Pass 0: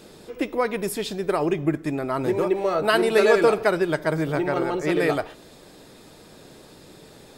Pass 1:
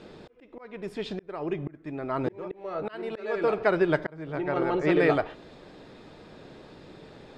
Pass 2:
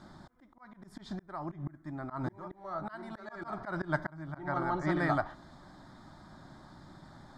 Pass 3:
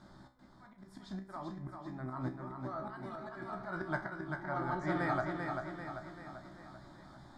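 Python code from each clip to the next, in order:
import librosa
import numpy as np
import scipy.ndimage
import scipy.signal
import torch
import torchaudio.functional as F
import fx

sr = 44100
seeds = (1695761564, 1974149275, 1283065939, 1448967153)

y1 = scipy.signal.sosfilt(scipy.signal.butter(2, 3200.0, 'lowpass', fs=sr, output='sos'), x)
y1 = fx.auto_swell(y1, sr, attack_ms=714.0)
y2 = fx.auto_swell(y1, sr, attack_ms=137.0)
y2 = fx.fixed_phaser(y2, sr, hz=1100.0, stages=4)
y3 = fx.comb_fb(y2, sr, f0_hz=64.0, decay_s=0.34, harmonics='all', damping=0.0, mix_pct=80)
y3 = fx.echo_feedback(y3, sr, ms=391, feedback_pct=52, wet_db=-5)
y3 = F.gain(torch.from_numpy(y3), 2.5).numpy()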